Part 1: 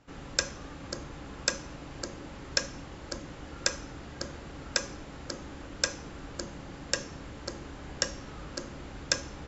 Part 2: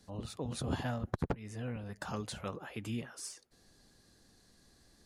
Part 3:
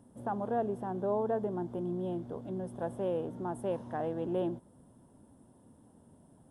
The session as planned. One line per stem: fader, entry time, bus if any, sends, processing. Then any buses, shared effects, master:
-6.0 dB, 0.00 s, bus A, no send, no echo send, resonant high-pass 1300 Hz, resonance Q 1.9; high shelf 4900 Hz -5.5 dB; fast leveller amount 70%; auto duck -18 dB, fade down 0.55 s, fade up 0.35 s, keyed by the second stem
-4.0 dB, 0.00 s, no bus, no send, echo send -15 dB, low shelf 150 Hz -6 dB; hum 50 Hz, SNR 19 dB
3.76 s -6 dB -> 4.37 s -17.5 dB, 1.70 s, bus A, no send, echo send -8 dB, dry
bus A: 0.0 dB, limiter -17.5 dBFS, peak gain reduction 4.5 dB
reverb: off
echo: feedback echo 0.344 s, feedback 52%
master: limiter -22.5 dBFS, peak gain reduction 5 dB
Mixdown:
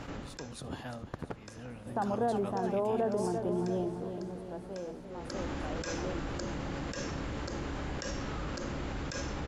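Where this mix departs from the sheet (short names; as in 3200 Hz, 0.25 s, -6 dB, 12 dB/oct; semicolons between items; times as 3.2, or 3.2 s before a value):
stem 1: missing resonant high-pass 1300 Hz, resonance Q 1.9; stem 3 -6.0 dB -> +3.0 dB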